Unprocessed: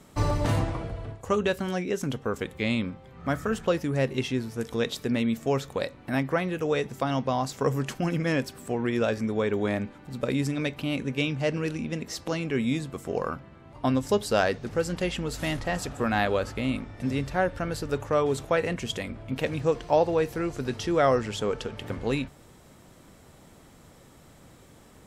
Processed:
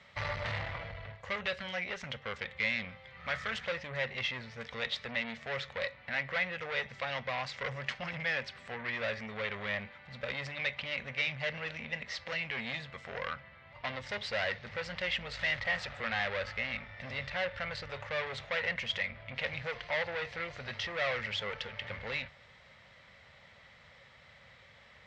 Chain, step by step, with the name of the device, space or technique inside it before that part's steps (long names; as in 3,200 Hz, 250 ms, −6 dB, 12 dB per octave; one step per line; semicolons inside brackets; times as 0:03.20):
0:02.89–0:03.69: high-shelf EQ 3,500 Hz +8.5 dB
scooped metal amplifier (tube saturation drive 29 dB, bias 0.5; loudspeaker in its box 83–4,100 Hz, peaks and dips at 230 Hz +5 dB, 550 Hz +9 dB, 2,000 Hz +10 dB; guitar amp tone stack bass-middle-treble 10-0-10)
level +6.5 dB